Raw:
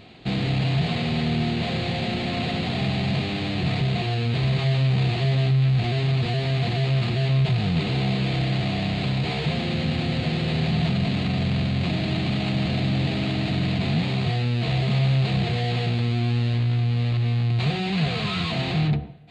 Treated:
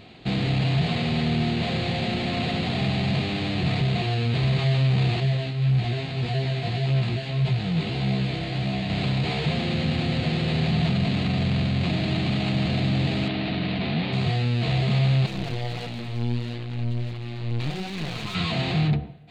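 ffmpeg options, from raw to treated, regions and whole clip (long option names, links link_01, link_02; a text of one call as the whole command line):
ffmpeg -i in.wav -filter_complex "[0:a]asettb=1/sr,asplit=3[link_01][link_02][link_03];[link_01]atrim=end=5.204[link_04];[link_02]atrim=start=5.2:end=8.9,asetpts=PTS-STARTPTS,afade=type=in:duration=0.004:curve=qsin,afade=type=out:start_time=3.696:duration=0.004:curve=qsin,bandreject=frequency=1200:width=20,flanger=delay=15:depth=3.6:speed=1.7[link_05];[link_03]atrim=start=8.896[link_06];[link_04][link_05]acrossfade=duration=0.004:curve1=hsin:curve2=qsin[link_07];[link_07][link_06]acrossfade=duration=0.004:curve1=qsin:curve2=hsin,asettb=1/sr,asplit=3[link_08][link_09][link_10];[link_08]atrim=end=13.284[link_11];[link_09]atrim=start=13.28:end=14.13,asetpts=PTS-STARTPTS,afade=type=in:duration=0.004:curve=qsin,afade=type=out:start_time=0.846:duration=0.004:curve=qsin,lowpass=frequency=4300:width=0.5412,lowpass=frequency=4300:width=1.3066,equalizer=frequency=110:width=2.4:gain=-12[link_12];[link_10]atrim=start=14.126[link_13];[link_11][link_12]acrossfade=duration=0.004:curve1=hsin:curve2=qsin[link_14];[link_14][link_13]acrossfade=duration=0.004:curve1=qsin:curve2=hsin,asettb=1/sr,asplit=3[link_15][link_16][link_17];[link_15]atrim=end=15.264[link_18];[link_16]atrim=start=15.26:end=18.35,asetpts=PTS-STARTPTS,afade=type=in:duration=0.004:curve=qsin,afade=type=out:start_time=3.086:duration=0.004:curve=qsin,flanger=delay=3.4:depth=5.3:regen=27:speed=1.5:shape=sinusoidal,aeval=exprs='clip(val(0),-1,0.0168)':channel_layout=same[link_19];[link_17]atrim=start=18.346[link_20];[link_18][link_19]acrossfade=duration=0.004:curve1=hsin:curve2=qsin[link_21];[link_21][link_20]acrossfade=duration=0.004:curve1=qsin:curve2=hsin" out.wav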